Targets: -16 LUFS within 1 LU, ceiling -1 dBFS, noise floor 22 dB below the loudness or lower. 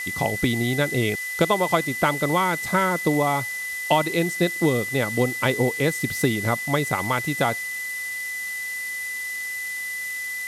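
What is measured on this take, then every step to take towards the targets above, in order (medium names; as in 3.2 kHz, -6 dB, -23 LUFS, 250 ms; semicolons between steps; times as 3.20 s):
steady tone 2 kHz; tone level -28 dBFS; noise floor -31 dBFS; noise floor target -46 dBFS; loudness -23.5 LUFS; peak level -6.0 dBFS; loudness target -16.0 LUFS
-> band-stop 2 kHz, Q 30; noise reduction 15 dB, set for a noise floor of -31 dBFS; trim +7.5 dB; peak limiter -1 dBFS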